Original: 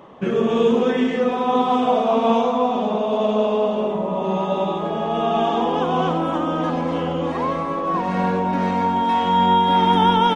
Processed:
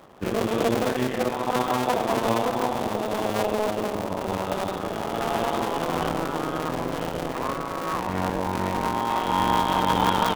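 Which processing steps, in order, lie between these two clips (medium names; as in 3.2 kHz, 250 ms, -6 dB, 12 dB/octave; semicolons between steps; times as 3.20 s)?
cycle switcher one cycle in 2, muted; trim -3 dB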